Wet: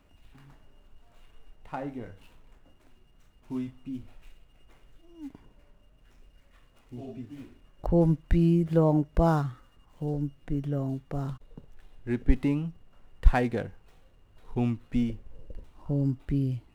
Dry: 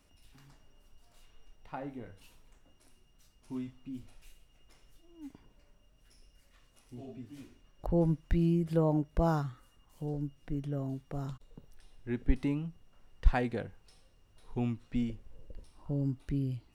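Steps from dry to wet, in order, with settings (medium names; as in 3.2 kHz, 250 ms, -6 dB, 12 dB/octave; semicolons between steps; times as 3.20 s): median filter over 9 samples; trim +5.5 dB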